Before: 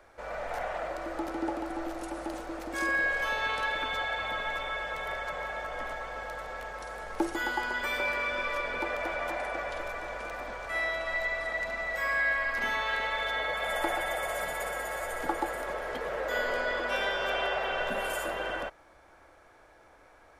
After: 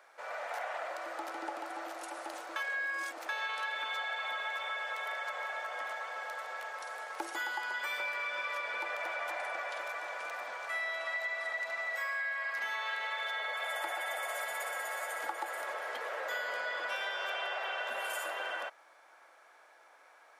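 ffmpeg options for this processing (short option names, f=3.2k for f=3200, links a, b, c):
-filter_complex "[0:a]asplit=3[a][b][c];[a]atrim=end=2.562[d];[b]atrim=start=2.558:end=3.292,asetpts=PTS-STARTPTS,areverse[e];[c]atrim=start=3.288[f];[d][e]acrossfade=d=0.004:c1=hsin:c2=hsin[g];[g][f]acrossfade=d=0.004:c1=hsin:c2=hsin,highpass=750,acompressor=threshold=-33dB:ratio=6"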